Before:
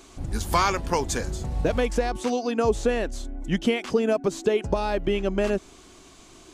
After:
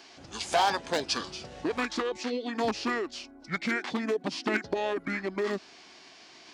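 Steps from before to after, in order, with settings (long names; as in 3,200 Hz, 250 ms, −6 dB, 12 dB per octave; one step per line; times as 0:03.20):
wavefolder on the positive side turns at −15 dBFS
formants moved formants −6 semitones
meter weighting curve A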